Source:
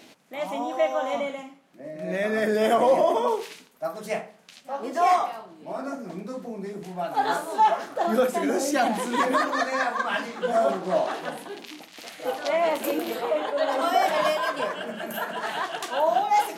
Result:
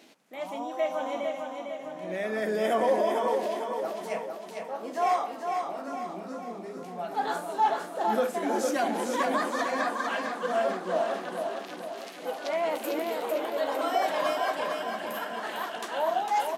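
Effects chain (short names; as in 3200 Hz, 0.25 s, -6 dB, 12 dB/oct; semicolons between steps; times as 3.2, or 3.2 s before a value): HPF 220 Hz 12 dB/oct; low shelf 370 Hz +3 dB; on a send: feedback echo 0.453 s, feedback 51%, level -5 dB; on the sum: gain -6 dB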